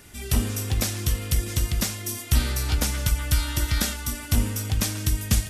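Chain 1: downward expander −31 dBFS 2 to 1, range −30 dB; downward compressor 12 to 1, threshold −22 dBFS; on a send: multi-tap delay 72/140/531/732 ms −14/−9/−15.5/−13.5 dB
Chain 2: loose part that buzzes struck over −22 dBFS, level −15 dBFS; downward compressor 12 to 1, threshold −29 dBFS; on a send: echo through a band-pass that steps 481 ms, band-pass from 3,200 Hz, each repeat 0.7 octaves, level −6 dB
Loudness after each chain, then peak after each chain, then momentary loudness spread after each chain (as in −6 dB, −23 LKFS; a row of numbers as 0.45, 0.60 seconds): −28.0, −33.5 LKFS; −11.5, −14.5 dBFS; 2, 2 LU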